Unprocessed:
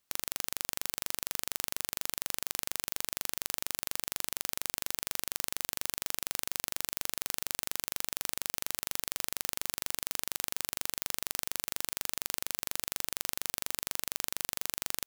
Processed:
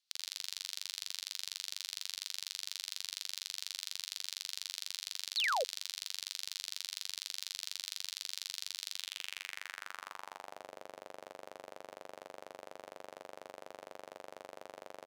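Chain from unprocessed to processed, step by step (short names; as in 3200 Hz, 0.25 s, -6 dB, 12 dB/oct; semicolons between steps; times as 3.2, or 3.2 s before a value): flutter echo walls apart 9 m, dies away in 0.37 s; band-pass sweep 4200 Hz -> 580 Hz, 8.91–10.71; painted sound fall, 5.36–5.64, 450–4800 Hz -35 dBFS; gain +3 dB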